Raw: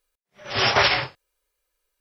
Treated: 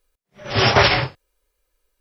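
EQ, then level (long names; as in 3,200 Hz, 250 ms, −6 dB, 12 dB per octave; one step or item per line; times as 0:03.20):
low-shelf EQ 430 Hz +10 dB
+2.0 dB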